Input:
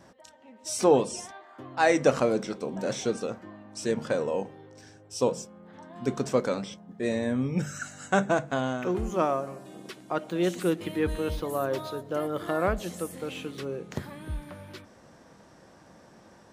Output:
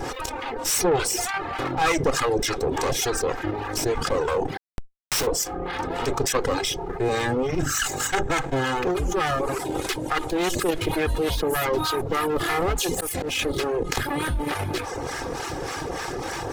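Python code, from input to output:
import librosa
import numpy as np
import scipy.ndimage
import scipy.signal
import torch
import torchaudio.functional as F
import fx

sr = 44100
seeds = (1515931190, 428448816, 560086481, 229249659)

p1 = fx.lower_of_two(x, sr, delay_ms=2.4)
p2 = fx.dereverb_blind(p1, sr, rt60_s=0.5)
p3 = fx.level_steps(p2, sr, step_db=24)
p4 = p2 + (p3 * 10.0 ** (2.0 / 20.0))
p5 = fx.schmitt(p4, sr, flips_db=-41.0, at=(4.57, 5.27))
p6 = fx.auto_swell(p5, sr, attack_ms=257.0, at=(12.89, 13.39))
p7 = fx.harmonic_tremolo(p6, sr, hz=3.4, depth_pct=70, crossover_hz=920.0)
p8 = 10.0 ** (-15.0 / 20.0) * np.tanh(p7 / 10.0 ** (-15.0 / 20.0))
y = fx.env_flatten(p8, sr, amount_pct=70)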